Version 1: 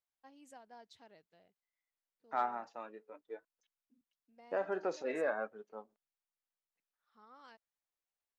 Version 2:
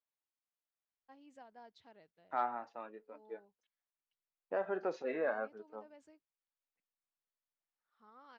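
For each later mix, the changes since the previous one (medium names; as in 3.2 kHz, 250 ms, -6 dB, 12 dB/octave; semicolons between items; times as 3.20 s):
first voice: entry +0.85 s; master: add distance through air 140 m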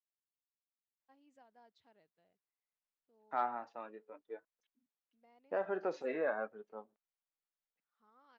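first voice -8.0 dB; second voice: entry +1.00 s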